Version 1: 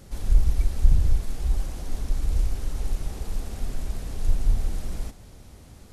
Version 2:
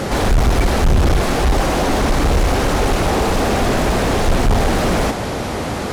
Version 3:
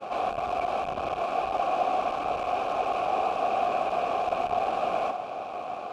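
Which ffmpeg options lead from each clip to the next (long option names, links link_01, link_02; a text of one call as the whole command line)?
ffmpeg -i in.wav -filter_complex "[0:a]asplit=2[link_01][link_02];[link_02]highpass=frequency=720:poles=1,volume=46dB,asoftclip=type=tanh:threshold=-4dB[link_03];[link_01][link_03]amix=inputs=2:normalize=0,lowpass=frequency=1100:poles=1,volume=-6dB" out.wav
ffmpeg -i in.wav -filter_complex "[0:a]agate=range=-33dB:threshold=-19dB:ratio=3:detection=peak,aeval=exprs='0.631*(cos(1*acos(clip(val(0)/0.631,-1,1)))-cos(1*PI/2))+0.126*(cos(6*acos(clip(val(0)/0.631,-1,1)))-cos(6*PI/2))+0.141*(cos(8*acos(clip(val(0)/0.631,-1,1)))-cos(8*PI/2))':channel_layout=same,asplit=3[link_01][link_02][link_03];[link_01]bandpass=frequency=730:width_type=q:width=8,volume=0dB[link_04];[link_02]bandpass=frequency=1090:width_type=q:width=8,volume=-6dB[link_05];[link_03]bandpass=frequency=2440:width_type=q:width=8,volume=-9dB[link_06];[link_04][link_05][link_06]amix=inputs=3:normalize=0" out.wav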